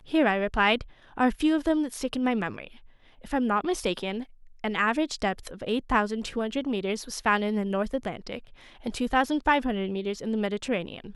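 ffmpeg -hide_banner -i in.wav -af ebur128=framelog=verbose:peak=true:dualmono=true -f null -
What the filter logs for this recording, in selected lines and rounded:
Integrated loudness:
  I:         -24.4 LUFS
  Threshold: -34.8 LUFS
Loudness range:
  LRA:         2.2 LU
  Threshold: -45.4 LUFS
  LRA low:   -26.5 LUFS
  LRA high:  -24.3 LUFS
True peak:
  Peak:       -9.3 dBFS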